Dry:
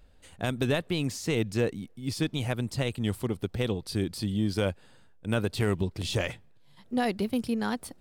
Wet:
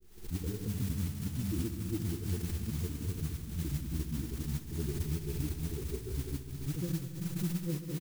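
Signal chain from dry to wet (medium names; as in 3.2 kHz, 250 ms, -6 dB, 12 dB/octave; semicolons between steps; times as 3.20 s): steep low-pass 680 Hz 96 dB/octave; harmonic-percussive split percussive -16 dB; compression, threshold -31 dBFS, peak gain reduction 8 dB; pitch shift -6 st; granulator, grains 20 per s, spray 668 ms; modulation noise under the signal 14 dB; multi-head delay 67 ms, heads all three, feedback 69%, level -16.5 dB; swell ahead of each attack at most 100 dB/s; trim +1.5 dB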